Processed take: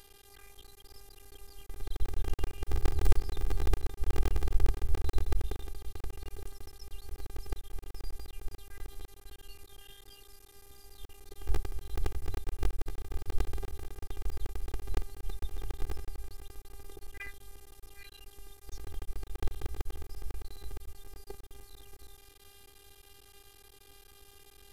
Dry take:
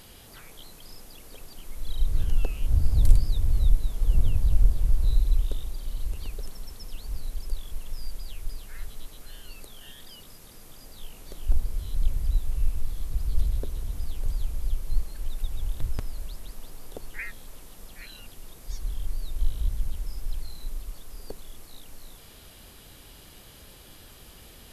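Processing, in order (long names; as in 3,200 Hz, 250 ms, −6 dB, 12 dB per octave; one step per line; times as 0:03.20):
sub-harmonics by changed cycles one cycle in 3, muted
phases set to zero 400 Hz
level −4 dB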